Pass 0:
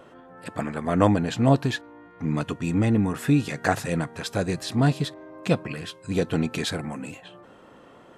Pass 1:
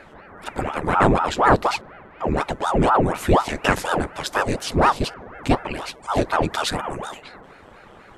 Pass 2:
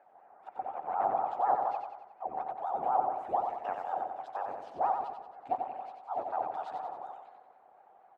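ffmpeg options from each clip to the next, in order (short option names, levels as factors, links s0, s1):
-af "acontrast=80,aeval=exprs='val(0)*sin(2*PI*590*n/s+590*0.9/4.1*sin(2*PI*4.1*n/s))':c=same"
-filter_complex "[0:a]bandpass=f=760:t=q:w=8.3:csg=0,asplit=2[s0][s1];[s1]aecho=0:1:91|182|273|364|455|546:0.562|0.281|0.141|0.0703|0.0351|0.0176[s2];[s0][s2]amix=inputs=2:normalize=0,volume=0.631"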